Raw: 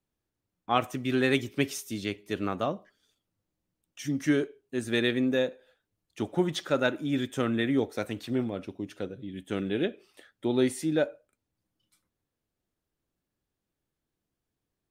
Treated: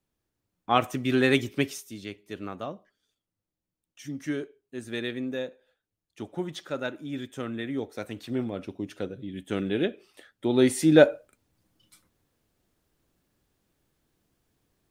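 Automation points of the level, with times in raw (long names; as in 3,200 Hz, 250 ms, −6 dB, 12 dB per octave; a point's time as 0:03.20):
0:01.52 +3 dB
0:01.92 −6 dB
0:07.69 −6 dB
0:08.74 +2 dB
0:10.48 +2 dB
0:11.07 +11.5 dB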